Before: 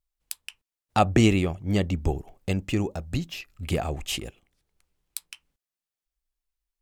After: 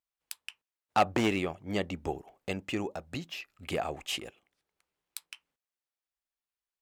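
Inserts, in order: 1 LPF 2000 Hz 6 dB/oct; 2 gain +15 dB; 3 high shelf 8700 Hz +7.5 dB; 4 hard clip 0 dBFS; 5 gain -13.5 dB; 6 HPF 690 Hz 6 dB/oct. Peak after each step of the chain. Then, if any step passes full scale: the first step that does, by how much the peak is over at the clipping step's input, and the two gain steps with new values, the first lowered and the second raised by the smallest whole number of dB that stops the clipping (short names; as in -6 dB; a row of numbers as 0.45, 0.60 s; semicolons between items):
-7.0, +8.0, +8.0, 0.0, -13.5, -10.0 dBFS; step 2, 8.0 dB; step 2 +7 dB, step 5 -5.5 dB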